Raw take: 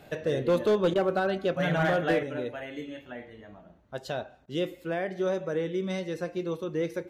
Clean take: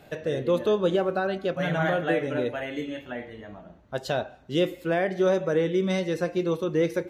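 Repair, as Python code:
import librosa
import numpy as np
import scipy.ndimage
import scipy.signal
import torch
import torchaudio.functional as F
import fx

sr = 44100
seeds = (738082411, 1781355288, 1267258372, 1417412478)

y = fx.fix_declip(x, sr, threshold_db=-18.5)
y = fx.fix_interpolate(y, sr, at_s=(0.94, 4.46), length_ms=14.0)
y = fx.gain(y, sr, db=fx.steps((0.0, 0.0), (2.23, 6.0)))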